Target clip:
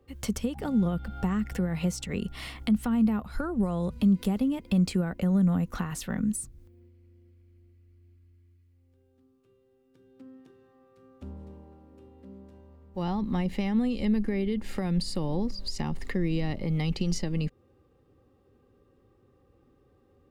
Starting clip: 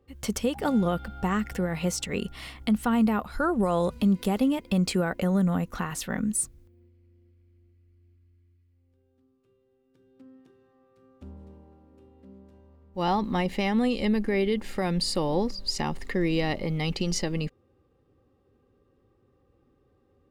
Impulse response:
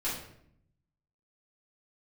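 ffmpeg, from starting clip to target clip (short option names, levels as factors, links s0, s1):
-filter_complex "[0:a]acrossover=split=240[s0][s1];[s1]acompressor=threshold=0.0126:ratio=4[s2];[s0][s2]amix=inputs=2:normalize=0,volume=1.33"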